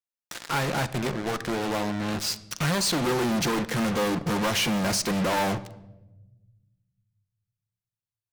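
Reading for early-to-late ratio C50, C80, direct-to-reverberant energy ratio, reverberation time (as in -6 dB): 16.0 dB, 19.0 dB, 10.5 dB, 1.0 s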